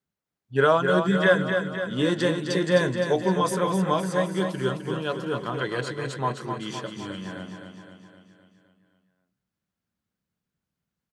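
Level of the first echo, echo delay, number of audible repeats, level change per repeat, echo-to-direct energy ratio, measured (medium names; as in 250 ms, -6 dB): -6.5 dB, 258 ms, 6, -5.0 dB, -5.0 dB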